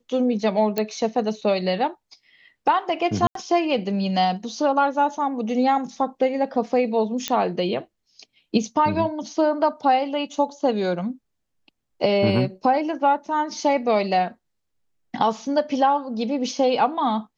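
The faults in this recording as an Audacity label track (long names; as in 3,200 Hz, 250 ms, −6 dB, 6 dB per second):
0.780000	0.780000	click −9 dBFS
3.270000	3.350000	drop-out 83 ms
7.280000	7.280000	click −7 dBFS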